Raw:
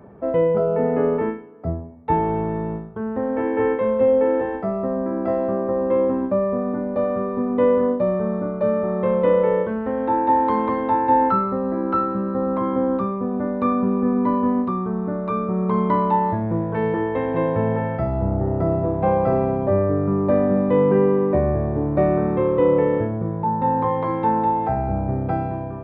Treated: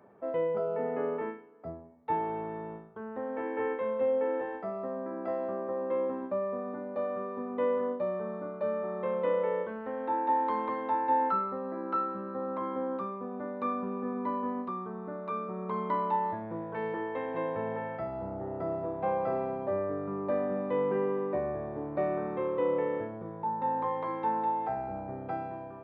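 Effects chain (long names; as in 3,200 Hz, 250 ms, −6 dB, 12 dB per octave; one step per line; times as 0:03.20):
high-pass filter 550 Hz 6 dB per octave
level −8 dB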